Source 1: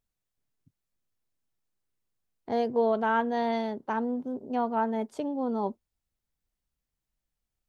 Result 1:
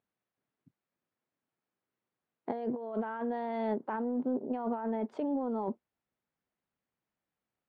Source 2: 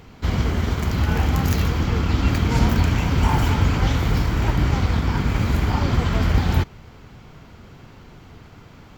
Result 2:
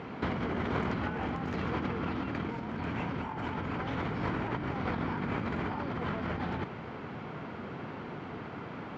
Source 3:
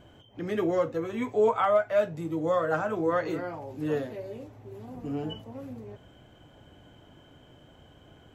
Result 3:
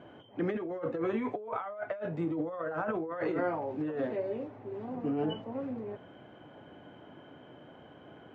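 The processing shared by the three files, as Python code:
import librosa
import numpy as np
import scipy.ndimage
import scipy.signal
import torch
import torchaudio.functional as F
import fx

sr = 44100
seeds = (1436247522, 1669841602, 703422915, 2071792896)

y = fx.bandpass_edges(x, sr, low_hz=190.0, high_hz=2100.0)
y = fx.over_compress(y, sr, threshold_db=-34.0, ratio=-1.0)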